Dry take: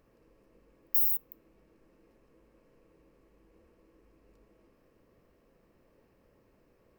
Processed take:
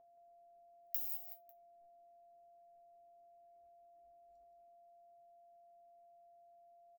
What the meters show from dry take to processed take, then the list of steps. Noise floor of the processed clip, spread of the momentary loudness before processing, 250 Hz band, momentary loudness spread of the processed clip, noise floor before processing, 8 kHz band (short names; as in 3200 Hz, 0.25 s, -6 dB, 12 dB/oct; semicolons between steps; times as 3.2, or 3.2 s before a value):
-64 dBFS, 6 LU, under -20 dB, 14 LU, -67 dBFS, n/a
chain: spectral noise reduction 14 dB; limiter -18.5 dBFS, peak gain reduction 6.5 dB; compressor 4:1, threshold -41 dBFS, peak gain reduction 13 dB; power-law curve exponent 1.4; whine 690 Hz -68 dBFS; resonator 130 Hz, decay 0.16 s, harmonics all, mix 80%; on a send: echo 0.174 s -10 dB; on the sum: gain +13.5 dB